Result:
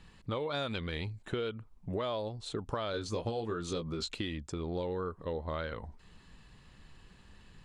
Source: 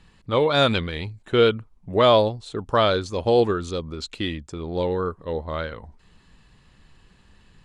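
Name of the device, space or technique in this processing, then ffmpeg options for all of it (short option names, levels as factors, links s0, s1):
serial compression, peaks first: -filter_complex "[0:a]acompressor=threshold=0.0501:ratio=5,acompressor=threshold=0.0224:ratio=2,asettb=1/sr,asplit=3[s0][s1][s2];[s0]atrim=end=2.924[s3];[s1]atrim=start=2.92:end=4.11,asetpts=PTS-STARTPTS,afade=t=in:d=0.004:c=qsin,afade=t=out:st=1.186:d=0.004:c=qsin,asplit=2[s4][s5];[s5]adelay=18,volume=0.562[s6];[s4][s6]amix=inputs=2:normalize=0,atrim=end_sample=52479[s7];[s2]atrim=start=4.106[s8];[s3][s7]acrossfade=d=0.004:c1=hsin:c2=qsin[s9];[s9][s8]acrossfade=d=0.004:c1=qsin:c2=hsin,volume=0.794"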